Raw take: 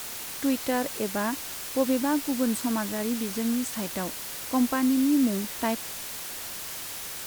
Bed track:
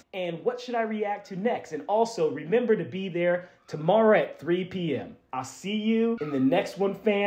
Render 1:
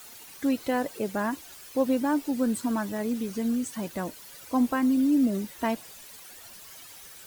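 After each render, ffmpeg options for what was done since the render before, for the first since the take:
-af "afftdn=nr=13:nf=-37"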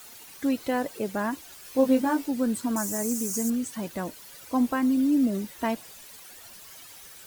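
-filter_complex "[0:a]asettb=1/sr,asplit=3[s0][s1][s2];[s0]atrim=end=1.634[s3];[s1]atrim=start=1.63:end=2.26,asetpts=PTS-STARTPTS,afade=t=in:d=0.004:c=qsin,afade=t=out:st=0.626:d=0.004:c=qsin,asplit=2[s4][s5];[s5]adelay=19,volume=0.708[s6];[s4][s6]amix=inputs=2:normalize=0,atrim=end_sample=27783[s7];[s2]atrim=start=2.256[s8];[s3][s7]acrossfade=d=0.004:c1=hsin:c2=qsin[s9];[s9][s8]acrossfade=d=0.004:c1=qsin:c2=hsin,asettb=1/sr,asplit=3[s10][s11][s12];[s10]atrim=end=2.764[s13];[s11]atrim=start=2.76:end=3.5,asetpts=PTS-STARTPTS,afade=t=in:d=0.004:c=qsin,afade=t=out:st=0.736:d=0.004:c=qsin,highshelf=f=5000:t=q:w=3:g=12[s14];[s12]atrim=start=3.496[s15];[s13][s14]acrossfade=d=0.004:c1=hsin:c2=qsin[s16];[s16][s15]acrossfade=d=0.004:c1=qsin:c2=hsin"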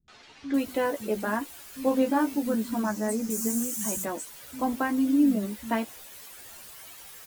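-filter_complex "[0:a]asplit=2[s0][s1];[s1]adelay=14,volume=0.562[s2];[s0][s2]amix=inputs=2:normalize=0,acrossover=split=190|5100[s3][s4][s5];[s4]adelay=80[s6];[s5]adelay=540[s7];[s3][s6][s7]amix=inputs=3:normalize=0"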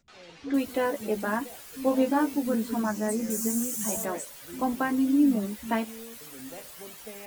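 -filter_complex "[1:a]volume=0.0944[s0];[0:a][s0]amix=inputs=2:normalize=0"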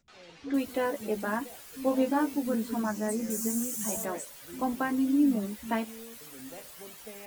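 -af "volume=0.75"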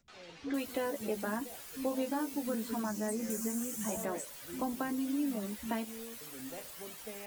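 -filter_complex "[0:a]acrossover=split=560|3500[s0][s1][s2];[s0]acompressor=threshold=0.0178:ratio=4[s3];[s1]acompressor=threshold=0.0112:ratio=4[s4];[s2]acompressor=threshold=0.01:ratio=4[s5];[s3][s4][s5]amix=inputs=3:normalize=0"

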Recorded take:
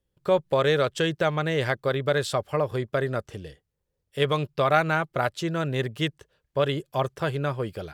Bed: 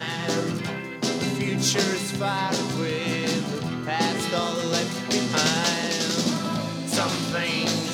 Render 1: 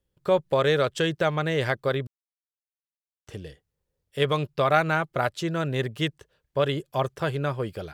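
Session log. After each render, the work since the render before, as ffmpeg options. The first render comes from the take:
-filter_complex "[0:a]asplit=3[s0][s1][s2];[s0]atrim=end=2.07,asetpts=PTS-STARTPTS,afade=t=out:st=2.066:d=0.004:c=hsin[s3];[s1]atrim=start=2.07:end=3.27,asetpts=PTS-STARTPTS,volume=0[s4];[s2]atrim=start=3.27,asetpts=PTS-STARTPTS,afade=t=in:d=0.004:c=hsin[s5];[s3][s4][s5]concat=n=3:v=0:a=1"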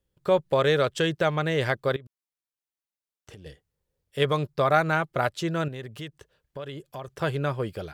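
-filter_complex "[0:a]asettb=1/sr,asplit=3[s0][s1][s2];[s0]atrim=end=1.964[s3];[s1]atrim=start=1.96:end=3.46,asetpts=PTS-STARTPTS,afade=t=in:d=0.004:c=qsin,afade=t=out:st=1.496:d=0.004:c=qsin,acompressor=threshold=0.00794:ratio=10:attack=3.2:release=140:knee=1:detection=peak[s4];[s2]atrim=start=3.456[s5];[s3][s4]acrossfade=d=0.004:c1=hsin:c2=qsin[s6];[s6][s5]acrossfade=d=0.004:c1=qsin:c2=hsin,asettb=1/sr,asplit=3[s7][s8][s9];[s7]atrim=end=4.254[s10];[s8]atrim=start=4.25:end=4.93,asetpts=PTS-STARTPTS,afade=t=in:d=0.004:c=qsin,afade=t=out:st=0.676:d=0.004:c=qsin,equalizer=f=2800:w=2.9:g=-7.5[s11];[s9]atrim=start=4.926[s12];[s10][s11]acrossfade=d=0.004:c1=hsin:c2=qsin[s13];[s13][s12]acrossfade=d=0.004:c1=qsin:c2=hsin,asettb=1/sr,asplit=3[s14][s15][s16];[s14]atrim=end=5.684[s17];[s15]atrim=start=5.68:end=7.08,asetpts=PTS-STARTPTS,afade=t=in:d=0.004:c=qsin,afade=t=out:st=1.396:d=0.004:c=qsin,acompressor=threshold=0.0141:ratio=3:attack=3.2:release=140:knee=1:detection=peak[s18];[s16]atrim=start=7.076[s19];[s17][s18]acrossfade=d=0.004:c1=hsin:c2=qsin[s20];[s20][s19]acrossfade=d=0.004:c1=qsin:c2=hsin"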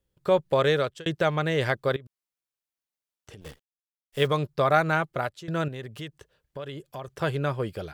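-filter_complex "[0:a]asplit=3[s0][s1][s2];[s0]afade=t=out:st=3.4:d=0.02[s3];[s1]acrusher=bits=8:dc=4:mix=0:aa=0.000001,afade=t=in:st=3.4:d=0.02,afade=t=out:st=4.26:d=0.02[s4];[s2]afade=t=in:st=4.26:d=0.02[s5];[s3][s4][s5]amix=inputs=3:normalize=0,asplit=3[s6][s7][s8];[s6]atrim=end=1.06,asetpts=PTS-STARTPTS,afade=t=out:st=0.6:d=0.46:c=qsin[s9];[s7]atrim=start=1.06:end=5.48,asetpts=PTS-STARTPTS,afade=t=in:d=0.004:c=hsin,afade=t=out:st=3.98:d=0.44:silence=0.141254[s10];[s8]atrim=start=5.48,asetpts=PTS-STARTPTS,afade=t=in:d=0.004:c=hsin:silence=0.141254[s11];[s9][s10][s11]concat=n=3:v=0:a=1"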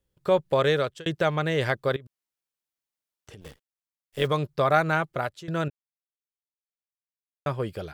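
-filter_complex "[0:a]asplit=3[s0][s1][s2];[s0]afade=t=out:st=3.45:d=0.02[s3];[s1]tremolo=f=100:d=0.571,afade=t=in:st=3.45:d=0.02,afade=t=out:st=4.23:d=0.02[s4];[s2]afade=t=in:st=4.23:d=0.02[s5];[s3][s4][s5]amix=inputs=3:normalize=0,asplit=3[s6][s7][s8];[s6]atrim=end=5.7,asetpts=PTS-STARTPTS,afade=t=out:st=5.696:d=0.004:c=hsin[s9];[s7]atrim=start=5.7:end=7.46,asetpts=PTS-STARTPTS,volume=0[s10];[s8]atrim=start=7.46,asetpts=PTS-STARTPTS,afade=t=in:d=0.004:c=hsin[s11];[s9][s10][s11]concat=n=3:v=0:a=1"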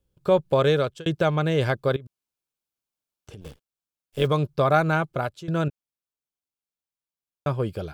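-af "lowshelf=f=420:g=5.5,bandreject=f=1900:w=5.9"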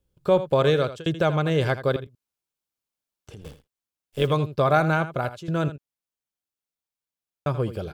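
-af "aecho=1:1:81:0.224"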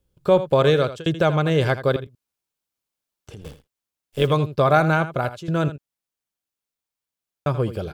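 -af "volume=1.41"

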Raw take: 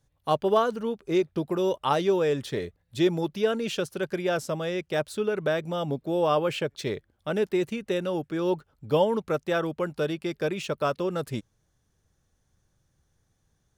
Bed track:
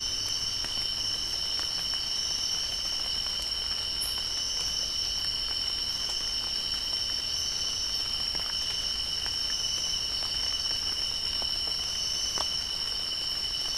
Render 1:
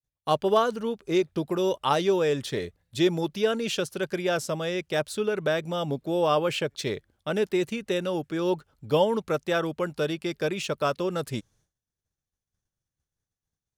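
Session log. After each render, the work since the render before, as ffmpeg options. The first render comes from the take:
-af "agate=range=0.0224:threshold=0.00141:ratio=3:detection=peak,equalizer=f=6600:w=0.36:g=4.5"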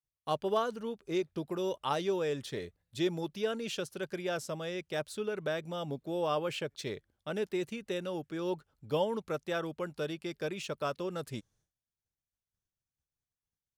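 -af "volume=0.376"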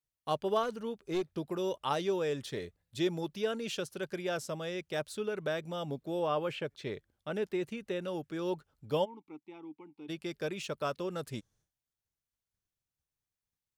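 -filter_complex "[0:a]asettb=1/sr,asplit=3[s0][s1][s2];[s0]atrim=end=0.634[s3];[s1]atrim=start=0.63:end=1.28,asetpts=PTS-STARTPTS,afade=t=in:d=0.004:c=qsin,afade=t=out:st=0.646:d=0.004:c=qsin,aeval=exprs='clip(val(0),-1,0.0335)':c=same[s4];[s2]atrim=start=1.276[s5];[s3][s4]acrossfade=d=0.004:c1=hsin:c2=qsin[s6];[s6][s5]acrossfade=d=0.004:c1=qsin:c2=hsin,asettb=1/sr,asplit=3[s7][s8][s9];[s7]atrim=end=6.194[s10];[s8]atrim=start=6.19:end=8.08,asetpts=PTS-STARTPTS,afade=t=in:d=0.004:c=qsin,afade=t=out:st=1.886:d=0.004:c=qsin,acrossover=split=3300[s11][s12];[s12]acompressor=threshold=0.00158:ratio=4:attack=1:release=60[s13];[s11][s13]amix=inputs=2:normalize=0[s14];[s9]atrim=start=8.076[s15];[s10][s14]acrossfade=d=0.004:c1=hsin:c2=qsin[s16];[s16][s15]acrossfade=d=0.004:c1=qsin:c2=hsin,asplit=3[s17][s18][s19];[s17]afade=t=out:st=9.04:d=0.02[s20];[s18]asplit=3[s21][s22][s23];[s21]bandpass=f=300:t=q:w=8,volume=1[s24];[s22]bandpass=f=870:t=q:w=8,volume=0.501[s25];[s23]bandpass=f=2240:t=q:w=8,volume=0.355[s26];[s24][s25][s26]amix=inputs=3:normalize=0,afade=t=in:st=9.04:d=0.02,afade=t=out:st=10.08:d=0.02[s27];[s19]afade=t=in:st=10.08:d=0.02[s28];[s20][s27][s28]amix=inputs=3:normalize=0"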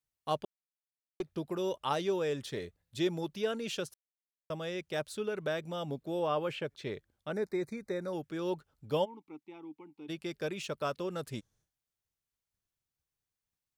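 -filter_complex "[0:a]asettb=1/sr,asplit=3[s0][s1][s2];[s0]atrim=end=7.324[s3];[s1]atrim=start=7.32:end=8.13,asetpts=PTS-STARTPTS,afade=t=in:d=0.004:c=qsin,afade=t=out:st=0.806:d=0.004:c=qsin,asuperstop=centerf=3000:order=12:qfactor=2.4[s4];[s2]atrim=start=8.126[s5];[s3][s4]acrossfade=d=0.004:c1=hsin:c2=qsin[s6];[s6][s5]acrossfade=d=0.004:c1=qsin:c2=hsin,asplit=5[s7][s8][s9][s10][s11];[s7]atrim=end=0.45,asetpts=PTS-STARTPTS,afade=t=out:st=0.446:d=0.004:c=hsin[s12];[s8]atrim=start=0.45:end=1.2,asetpts=PTS-STARTPTS,volume=0[s13];[s9]atrim=start=1.2:end=3.94,asetpts=PTS-STARTPTS,afade=t=in:d=0.004:c=hsin,afade=t=out:st=2.736:d=0.004:c=hsin[s14];[s10]atrim=start=3.94:end=4.5,asetpts=PTS-STARTPTS,volume=0[s15];[s11]atrim=start=4.5,asetpts=PTS-STARTPTS,afade=t=in:d=0.004:c=hsin[s16];[s12][s13][s14][s15][s16]concat=n=5:v=0:a=1"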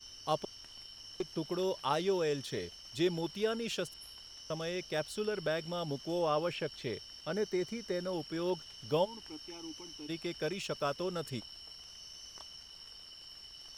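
-filter_complex "[1:a]volume=0.1[s0];[0:a][s0]amix=inputs=2:normalize=0"

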